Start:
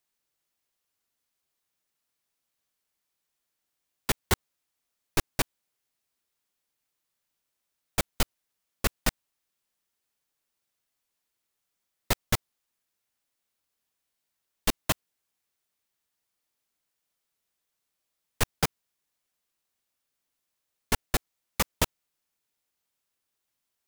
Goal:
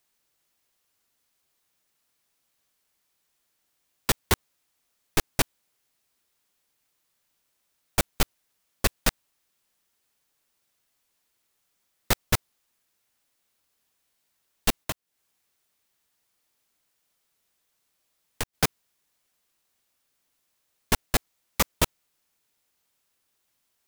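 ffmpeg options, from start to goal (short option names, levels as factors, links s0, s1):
-filter_complex "[0:a]asplit=3[s0][s1][s2];[s0]afade=t=out:st=14.83:d=0.02[s3];[s1]acompressor=threshold=0.0141:ratio=5,afade=t=in:st=14.83:d=0.02,afade=t=out:st=18.53:d=0.02[s4];[s2]afade=t=in:st=18.53:d=0.02[s5];[s3][s4][s5]amix=inputs=3:normalize=0,asoftclip=type=hard:threshold=0.0668,volume=2.37"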